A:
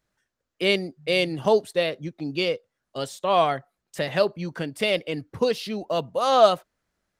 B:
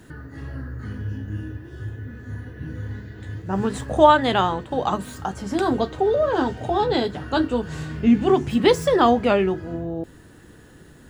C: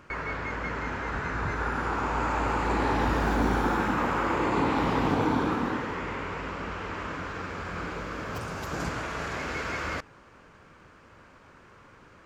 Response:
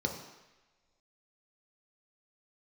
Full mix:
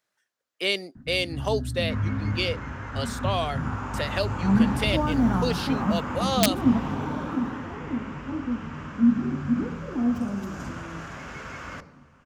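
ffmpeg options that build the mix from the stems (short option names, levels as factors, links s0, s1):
-filter_complex "[0:a]aeval=exprs='(mod(2*val(0)+1,2)-1)/2':c=same,highpass=f=730:p=1,volume=1.12,asplit=2[s0][s1];[1:a]lowpass=f=1600:w=0.5412,lowpass=f=1600:w=1.3066,lowshelf=f=320:t=q:w=3:g=8,adelay=950,volume=0.398,asplit=2[s2][s3];[s3]volume=0.106[s4];[2:a]adelay=1800,volume=0.562,asplit=2[s5][s6];[s6]volume=0.2[s7];[s1]apad=whole_len=531244[s8];[s2][s8]sidechaingate=range=0.0224:threshold=0.00251:ratio=16:detection=peak[s9];[3:a]atrim=start_sample=2205[s10];[s4][s7]amix=inputs=2:normalize=0[s11];[s11][s10]afir=irnorm=-1:irlink=0[s12];[s0][s9][s5][s12]amix=inputs=4:normalize=0,acrossover=split=440|3000[s13][s14][s15];[s14]acompressor=threshold=0.0447:ratio=6[s16];[s13][s16][s15]amix=inputs=3:normalize=0"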